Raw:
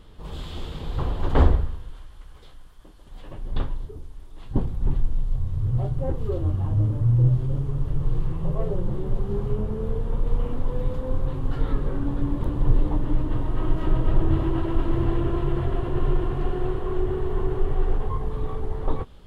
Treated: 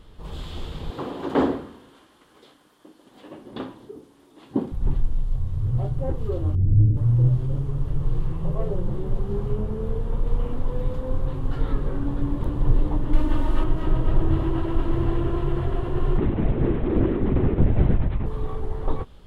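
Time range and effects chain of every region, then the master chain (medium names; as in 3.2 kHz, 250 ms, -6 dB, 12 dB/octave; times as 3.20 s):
0.90–4.72 s: resonant high-pass 270 Hz, resonance Q 2 + flutter echo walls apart 10.5 m, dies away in 0.29 s
6.55–6.97 s: inverse Chebyshev low-pass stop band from 2.5 kHz, stop band 80 dB + bass shelf 120 Hz +8.5 dB
13.13–13.64 s: comb 3.4 ms, depth 68% + tape noise reduction on one side only encoder only
16.18–18.26 s: median filter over 41 samples + comb 5.6 ms, depth 44% + LPC vocoder at 8 kHz whisper
whole clip: none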